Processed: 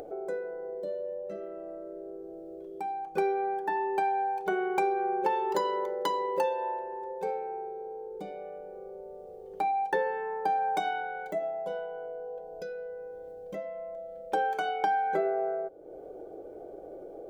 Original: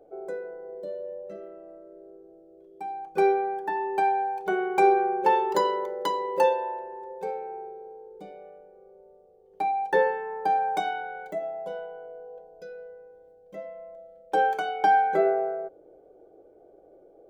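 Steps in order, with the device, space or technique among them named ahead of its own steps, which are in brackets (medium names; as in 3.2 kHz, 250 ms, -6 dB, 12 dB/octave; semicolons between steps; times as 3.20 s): upward and downward compression (upward compressor, threshold -33 dBFS; compression 5:1, threshold -25 dBFS, peak gain reduction 9.5 dB)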